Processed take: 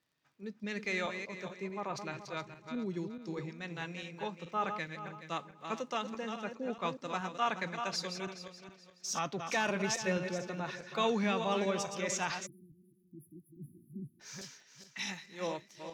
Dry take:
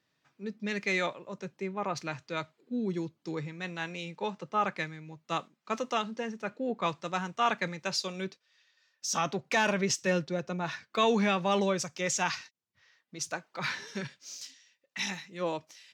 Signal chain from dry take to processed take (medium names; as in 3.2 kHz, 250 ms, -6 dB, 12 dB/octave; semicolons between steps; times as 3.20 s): backward echo that repeats 212 ms, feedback 51%, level -7 dB; crackle 43 per s -56 dBFS; spectral selection erased 12.46–14.21 s, 370–9800 Hz; trim -5.5 dB